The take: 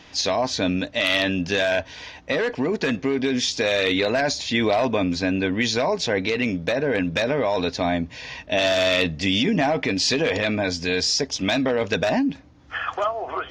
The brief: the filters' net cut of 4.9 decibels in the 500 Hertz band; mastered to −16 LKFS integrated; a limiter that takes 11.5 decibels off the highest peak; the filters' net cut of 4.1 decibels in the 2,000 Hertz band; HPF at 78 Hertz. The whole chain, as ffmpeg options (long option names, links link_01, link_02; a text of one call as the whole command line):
ffmpeg -i in.wav -af "highpass=78,equalizer=frequency=500:width_type=o:gain=-6,equalizer=frequency=2000:width_type=o:gain=-5,volume=13.5dB,alimiter=limit=-7dB:level=0:latency=1" out.wav